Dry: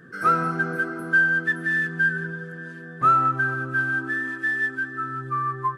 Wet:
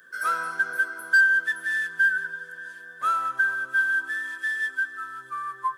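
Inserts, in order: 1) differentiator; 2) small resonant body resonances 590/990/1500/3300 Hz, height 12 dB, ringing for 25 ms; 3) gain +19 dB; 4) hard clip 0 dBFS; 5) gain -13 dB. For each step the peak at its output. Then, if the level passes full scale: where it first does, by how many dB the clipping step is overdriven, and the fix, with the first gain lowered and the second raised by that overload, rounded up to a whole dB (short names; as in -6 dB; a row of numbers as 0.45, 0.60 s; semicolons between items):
-24.0, -16.0, +3.0, 0.0, -13.0 dBFS; step 3, 3.0 dB; step 3 +16 dB, step 5 -10 dB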